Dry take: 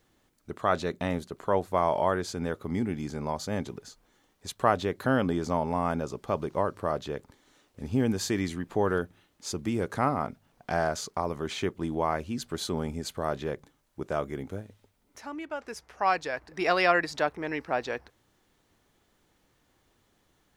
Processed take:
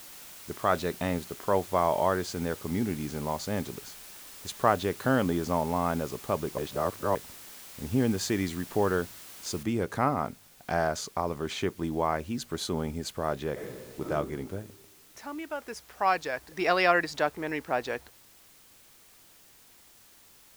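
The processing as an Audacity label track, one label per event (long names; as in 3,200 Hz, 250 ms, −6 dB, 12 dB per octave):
6.580000	7.150000	reverse
9.630000	9.630000	noise floor change −47 dB −57 dB
13.520000	14.040000	thrown reverb, RT60 1.6 s, DRR −3.5 dB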